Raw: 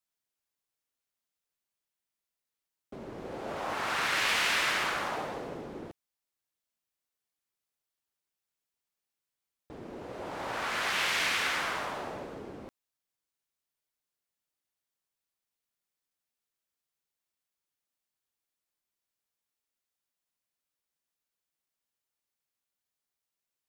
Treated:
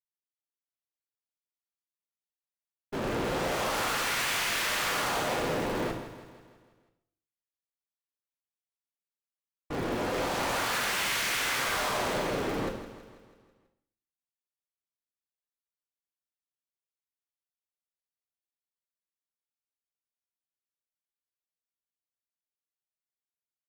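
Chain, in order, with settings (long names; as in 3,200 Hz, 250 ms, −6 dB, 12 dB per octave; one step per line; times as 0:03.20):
automatic gain control gain up to 15 dB
in parallel at −3 dB: wrap-around overflow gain 23 dB
on the sum: tube saturation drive 33 dB, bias 0.75
downward expander −36 dBFS
repeating echo 163 ms, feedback 55%, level −13 dB
on a send at −3 dB: convolution reverb RT60 0.60 s, pre-delay 7 ms
on the sum: level +2 dB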